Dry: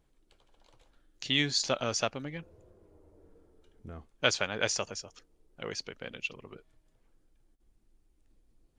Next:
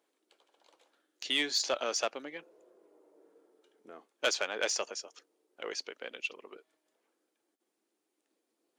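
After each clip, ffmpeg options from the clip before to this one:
ffmpeg -i in.wav -af "highpass=frequency=320:width=0.5412,highpass=frequency=320:width=1.3066,asoftclip=type=tanh:threshold=-19dB" out.wav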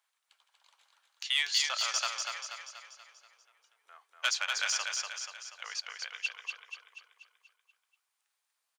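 ffmpeg -i in.wav -filter_complex "[0:a]highpass=frequency=980:width=0.5412,highpass=frequency=980:width=1.3066,asplit=2[link_01][link_02];[link_02]aecho=0:1:241|482|723|964|1205|1446|1687:0.596|0.304|0.155|0.079|0.0403|0.0206|0.0105[link_03];[link_01][link_03]amix=inputs=2:normalize=0,volume=1.5dB" out.wav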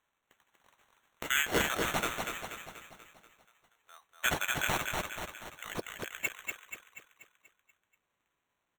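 ffmpeg -i in.wav -af "acrusher=samples=9:mix=1:aa=0.000001" out.wav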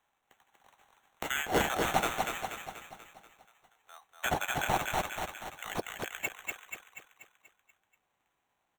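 ffmpeg -i in.wav -filter_complex "[0:a]equalizer=frequency=780:width_type=o:width=0.35:gain=9.5,acrossover=split=500|940[link_01][link_02][link_03];[link_03]alimiter=limit=-19dB:level=0:latency=1:release=360[link_04];[link_01][link_02][link_04]amix=inputs=3:normalize=0,volume=1.5dB" out.wav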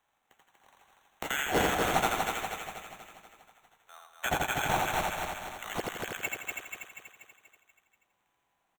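ffmpeg -i in.wav -af "aecho=1:1:84|168|252|336|420:0.708|0.269|0.102|0.0388|0.0148" out.wav

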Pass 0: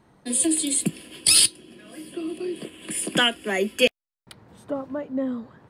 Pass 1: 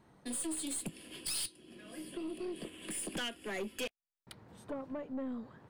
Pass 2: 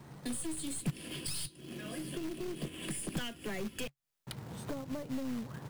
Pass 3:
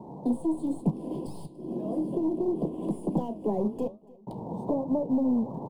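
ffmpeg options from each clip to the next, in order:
ffmpeg -i in.wav -af "acompressor=threshold=-32dB:ratio=2,aeval=exprs='(tanh(25.1*val(0)+0.3)-tanh(0.3))/25.1':channel_layout=same,volume=-5dB" out.wav
ffmpeg -i in.wav -filter_complex "[0:a]equalizer=frequency=140:width=3.5:gain=10.5,acrossover=split=170[link_01][link_02];[link_02]acompressor=threshold=-49dB:ratio=5[link_03];[link_01][link_03]amix=inputs=2:normalize=0,acrossover=split=7100[link_04][link_05];[link_04]acrusher=bits=3:mode=log:mix=0:aa=0.000001[link_06];[link_06][link_05]amix=inputs=2:normalize=0,volume=9dB" out.wav
ffmpeg -i in.wav -af "firequalizer=gain_entry='entry(130,0);entry(180,12);entry(950,14);entry(1400,-29);entry(3700,-17)':delay=0.05:min_phase=1,aecho=1:1:287|574|861:0.0631|0.0328|0.0171,flanger=delay=9.8:depth=9.2:regen=-74:speed=1:shape=triangular,volume=4.5dB" out.wav

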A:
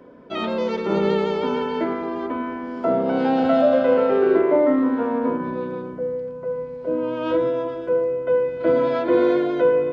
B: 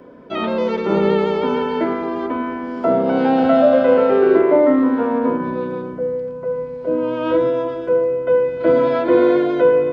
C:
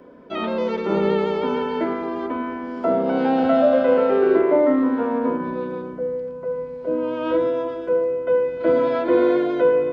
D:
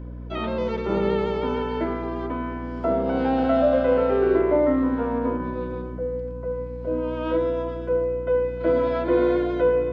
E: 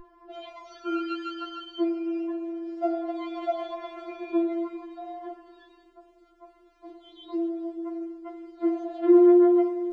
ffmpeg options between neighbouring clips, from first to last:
ffmpeg -i in.wav -filter_complex "[0:a]acrossover=split=3400[link_01][link_02];[link_02]acompressor=threshold=-50dB:ratio=4:attack=1:release=60[link_03];[link_01][link_03]amix=inputs=2:normalize=0,volume=4dB" out.wav
ffmpeg -i in.wav -af "equalizer=frequency=130:width_type=o:width=0.34:gain=-7,volume=-3.5dB" out.wav
ffmpeg -i in.wav -af "aeval=exprs='val(0)+0.0282*(sin(2*PI*60*n/s)+sin(2*PI*2*60*n/s)/2+sin(2*PI*3*60*n/s)/3+sin(2*PI*4*60*n/s)/4+sin(2*PI*5*60*n/s)/5)':channel_layout=same,volume=-3dB" out.wav
ffmpeg -i in.wav -af "afftfilt=real='re*4*eq(mod(b,16),0)':imag='im*4*eq(mod(b,16),0)':win_size=2048:overlap=0.75" out.wav

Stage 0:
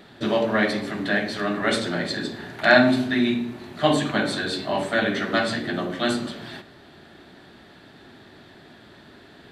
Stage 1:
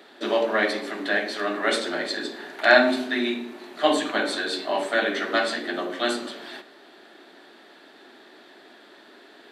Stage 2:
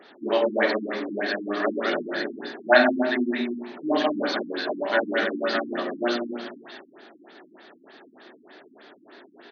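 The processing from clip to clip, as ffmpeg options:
ffmpeg -i in.wav -af "highpass=frequency=290:width=0.5412,highpass=frequency=290:width=1.3066" out.wav
ffmpeg -i in.wav -af "aecho=1:1:99.13|204.1:0.316|0.631,afftfilt=real='re*lt(b*sr/1024,320*pow(6700/320,0.5+0.5*sin(2*PI*3.3*pts/sr)))':imag='im*lt(b*sr/1024,320*pow(6700/320,0.5+0.5*sin(2*PI*3.3*pts/sr)))':win_size=1024:overlap=0.75" out.wav

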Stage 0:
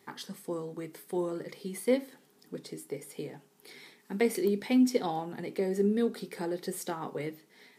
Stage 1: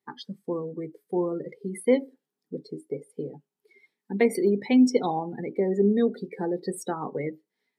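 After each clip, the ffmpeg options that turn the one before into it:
ffmpeg -i in.wav -af "afftdn=noise_reduction=29:noise_floor=-39,volume=5.5dB" out.wav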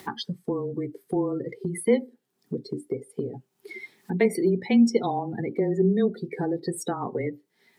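ffmpeg -i in.wav -af "acompressor=mode=upward:threshold=-23dB:ratio=2.5,afreqshift=-20" out.wav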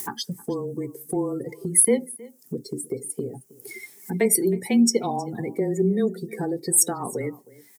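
ffmpeg -i in.wav -filter_complex "[0:a]acrossover=split=470[link_01][link_02];[link_02]aexciter=amount=9.1:drive=5.4:freq=5700[link_03];[link_01][link_03]amix=inputs=2:normalize=0,aecho=1:1:316:0.0841" out.wav

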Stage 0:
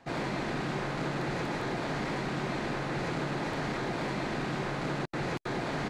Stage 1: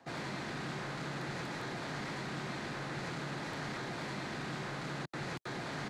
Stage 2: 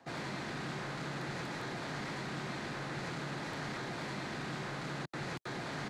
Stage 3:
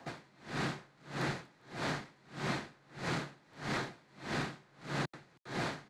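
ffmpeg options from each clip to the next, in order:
ffmpeg -i in.wav -filter_complex "[0:a]highpass=frequency=140:poles=1,equalizer=frequency=2500:width_type=o:width=0.75:gain=-3.5,acrossover=split=180|1300[link_01][link_02][link_03];[link_02]alimiter=level_in=12.5dB:limit=-24dB:level=0:latency=1,volume=-12.5dB[link_04];[link_01][link_04][link_03]amix=inputs=3:normalize=0,volume=-2dB" out.wav
ffmpeg -i in.wav -af anull out.wav
ffmpeg -i in.wav -af "aeval=exprs='val(0)*pow(10,-32*(0.5-0.5*cos(2*PI*1.6*n/s))/20)':channel_layout=same,volume=6.5dB" out.wav

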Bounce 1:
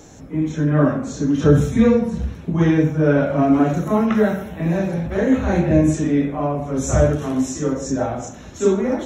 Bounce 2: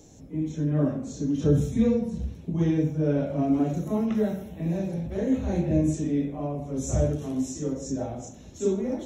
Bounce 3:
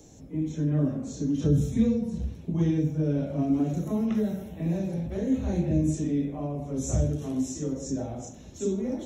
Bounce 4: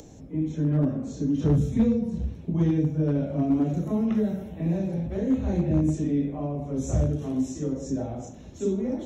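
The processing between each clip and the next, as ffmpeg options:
ffmpeg -i in.wav -af "equalizer=frequency=1400:width=0.94:gain=-13,volume=-7dB" out.wav
ffmpeg -i in.wav -filter_complex "[0:a]acrossover=split=350|3000[link_01][link_02][link_03];[link_02]acompressor=threshold=-35dB:ratio=6[link_04];[link_01][link_04][link_03]amix=inputs=3:normalize=0" out.wav
ffmpeg -i in.wav -af "highshelf=frequency=4600:gain=-10,acompressor=mode=upward:threshold=-44dB:ratio=2.5,aeval=exprs='clip(val(0),-1,0.119)':channel_layout=same,volume=2dB" out.wav

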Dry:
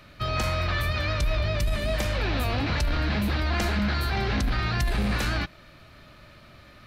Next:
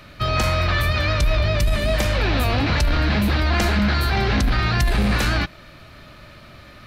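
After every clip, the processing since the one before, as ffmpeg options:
ffmpeg -i in.wav -af "acontrast=69" out.wav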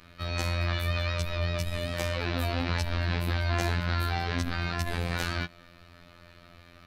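ffmpeg -i in.wav -af "afftfilt=real='hypot(re,im)*cos(PI*b)':imag='0':win_size=2048:overlap=0.75,volume=-6dB" out.wav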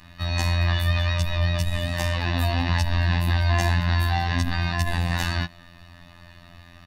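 ffmpeg -i in.wav -af "aecho=1:1:1.1:0.79,volume=3dB" out.wav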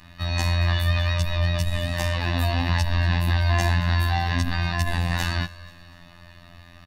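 ffmpeg -i in.wav -af "aecho=1:1:242|484|726:0.1|0.044|0.0194" out.wav

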